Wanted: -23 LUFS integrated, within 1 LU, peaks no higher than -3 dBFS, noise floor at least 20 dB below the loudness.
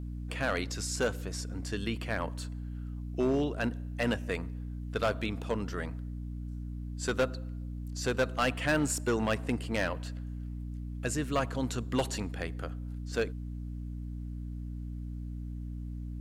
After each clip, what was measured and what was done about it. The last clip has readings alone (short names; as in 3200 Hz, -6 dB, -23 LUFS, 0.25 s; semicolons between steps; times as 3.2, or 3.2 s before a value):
clipped 0.6%; flat tops at -21.5 dBFS; hum 60 Hz; harmonics up to 300 Hz; hum level -36 dBFS; loudness -34.0 LUFS; peak -21.5 dBFS; loudness target -23.0 LUFS
-> clip repair -21.5 dBFS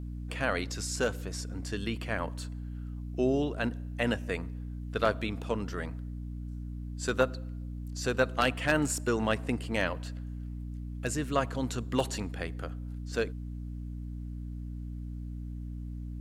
clipped 0.0%; hum 60 Hz; harmonics up to 300 Hz; hum level -36 dBFS
-> de-hum 60 Hz, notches 5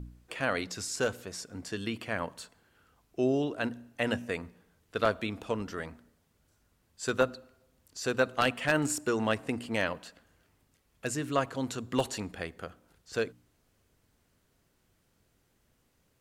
hum none; loudness -32.5 LUFS; peak -11.5 dBFS; loudness target -23.0 LUFS
-> gain +9.5 dB; limiter -3 dBFS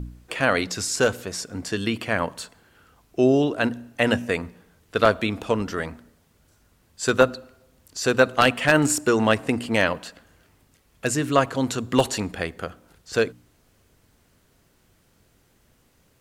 loudness -23.0 LUFS; peak -3.0 dBFS; noise floor -62 dBFS